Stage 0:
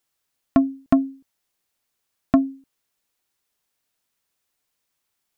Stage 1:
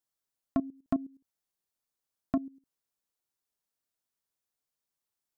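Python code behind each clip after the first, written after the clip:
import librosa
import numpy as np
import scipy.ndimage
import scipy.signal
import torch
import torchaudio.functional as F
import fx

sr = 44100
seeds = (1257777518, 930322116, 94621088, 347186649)

y = fx.peak_eq(x, sr, hz=2400.0, db=-5.5, octaves=1.2)
y = fx.level_steps(y, sr, step_db=16)
y = y * 10.0 ** (-9.0 / 20.0)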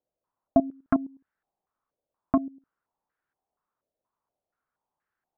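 y = np.clip(10.0 ** (19.5 / 20.0) * x, -1.0, 1.0) / 10.0 ** (19.5 / 20.0)
y = fx.filter_held_lowpass(y, sr, hz=4.2, low_hz=580.0, high_hz=1600.0)
y = y * 10.0 ** (5.5 / 20.0)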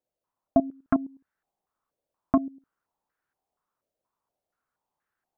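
y = fx.rider(x, sr, range_db=10, speed_s=2.0)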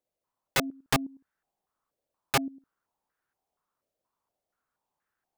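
y = (np.mod(10.0 ** (17.0 / 20.0) * x + 1.0, 2.0) - 1.0) / 10.0 ** (17.0 / 20.0)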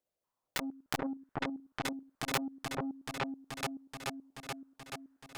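y = fx.echo_opening(x, sr, ms=430, hz=750, octaves=2, feedback_pct=70, wet_db=0)
y = fx.transformer_sat(y, sr, knee_hz=980.0)
y = y * 10.0 ** (-2.0 / 20.0)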